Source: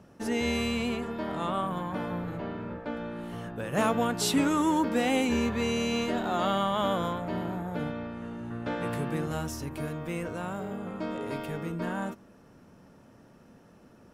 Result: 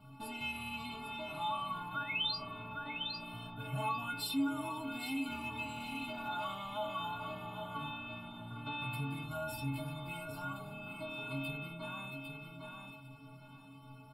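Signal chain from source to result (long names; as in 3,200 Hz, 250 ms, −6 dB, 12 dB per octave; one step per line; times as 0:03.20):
sound drawn into the spectrogram rise, 0:01.94–0:02.38, 1,300–5,400 Hz −28 dBFS
on a send: repeating echo 803 ms, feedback 21%, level −10 dB
on the sum: downward compressor 2 to 1, threshold −38 dBFS, peak gain reduction 9.5 dB
stiff-string resonator 130 Hz, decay 0.74 s, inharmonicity 0.03
in parallel at +0.5 dB: brickwall limiter −46 dBFS, peak gain reduction 11 dB
on the sum: phaser with its sweep stopped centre 1,800 Hz, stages 6
level +12 dB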